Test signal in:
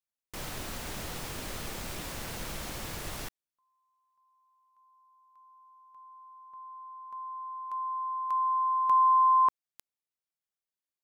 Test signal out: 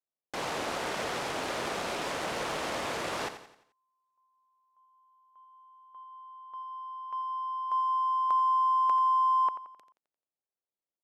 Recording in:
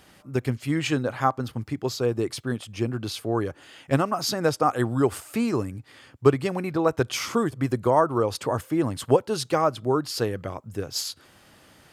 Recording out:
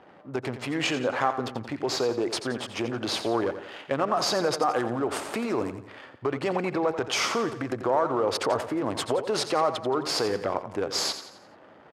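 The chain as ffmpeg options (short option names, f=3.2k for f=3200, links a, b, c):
-filter_complex "[0:a]asplit=2[a][b];[b]alimiter=limit=-15.5dB:level=0:latency=1:release=126,volume=-3dB[c];[a][c]amix=inputs=2:normalize=0,acompressor=threshold=-26dB:ratio=10:attack=8:release=20:knee=1:detection=peak,crystalizer=i=9:c=0,adynamicsmooth=sensitivity=5.5:basefreq=710,bandpass=f=580:t=q:w=0.86:csg=0,aecho=1:1:87|174|261|348|435:0.282|0.124|0.0546|0.024|0.0106,volume=1.5dB"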